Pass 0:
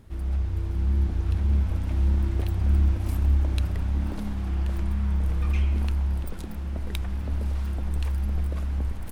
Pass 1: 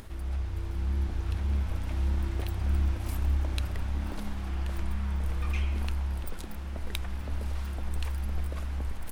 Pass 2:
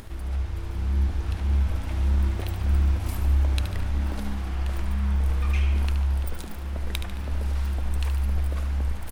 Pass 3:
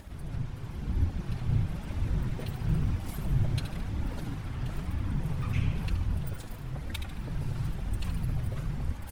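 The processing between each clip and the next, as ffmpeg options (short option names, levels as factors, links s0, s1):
-af "equalizer=f=130:w=0.31:g=-8.5,acompressor=mode=upward:threshold=0.0141:ratio=2.5,volume=1.12"
-af "aecho=1:1:73|146|219|292|365|438:0.335|0.167|0.0837|0.0419|0.0209|0.0105,volume=1.5"
-af "afftfilt=real='hypot(re,im)*cos(2*PI*random(0))':imag='hypot(re,im)*sin(2*PI*random(1))':win_size=512:overlap=0.75,flanger=delay=3.4:depth=4.8:regen=-36:speed=1:shape=sinusoidal,volume=1.58"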